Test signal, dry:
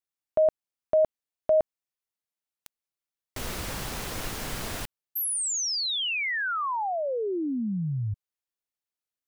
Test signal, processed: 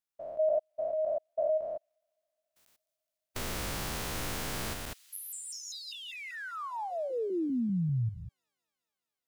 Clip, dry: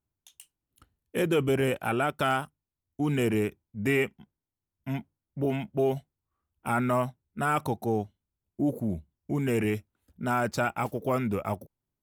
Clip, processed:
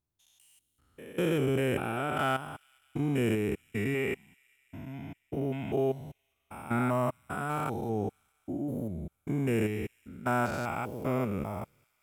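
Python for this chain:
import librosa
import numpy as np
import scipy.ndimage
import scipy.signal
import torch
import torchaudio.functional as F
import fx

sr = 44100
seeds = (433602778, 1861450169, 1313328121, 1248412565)

y = fx.spec_steps(x, sr, hold_ms=200)
y = fx.echo_wet_highpass(y, sr, ms=209, feedback_pct=74, hz=3200.0, wet_db=-21.0)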